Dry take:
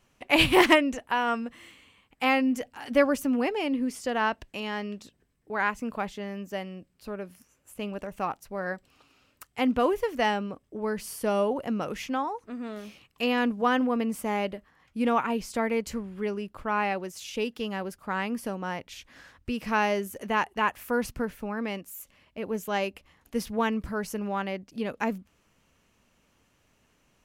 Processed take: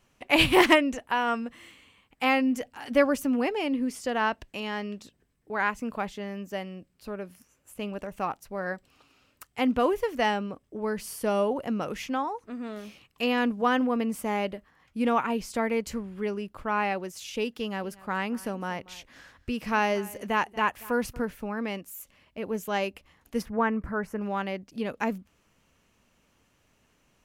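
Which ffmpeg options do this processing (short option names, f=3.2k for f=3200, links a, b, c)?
-filter_complex "[0:a]asettb=1/sr,asplit=3[a][b][c];[a]atrim=end=17.514[d];[b]atrim=start=17.51:end=21.23,asetpts=PTS-STARTPTS,afade=t=in:d=0.004:c=qsin,afade=t=out:st=3.716:d=0.004:c=qsin,aecho=1:1:235:0.0944,atrim=end_sample=164052[e];[c]atrim=start=21.226[f];[d][e]acrossfade=d=0.004:c1=hsin:c2=qsin[g];[g][f]acrossfade=d=0.004:c1=qsin:c2=hsin,asplit=3[h][i][j];[h]afade=t=out:st=23.41:d=0.02[k];[i]highshelf=f=2.5k:t=q:w=1.5:g=-12.5,afade=t=in:st=23.41:d=0.02,afade=t=out:st=24.2:d=0.02[l];[j]afade=t=in:st=24.2:d=0.02[m];[k][l][m]amix=inputs=3:normalize=0"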